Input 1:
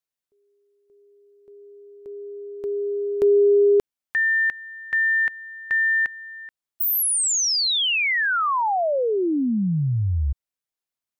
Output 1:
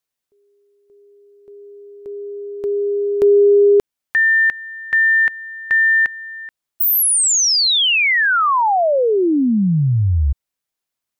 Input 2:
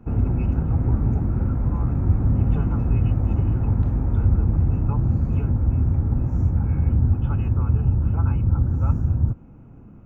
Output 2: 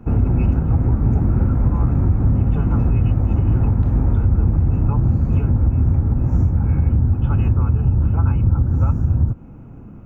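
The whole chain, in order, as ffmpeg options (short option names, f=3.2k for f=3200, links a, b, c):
-af "alimiter=limit=-14dB:level=0:latency=1:release=212,volume=6.5dB"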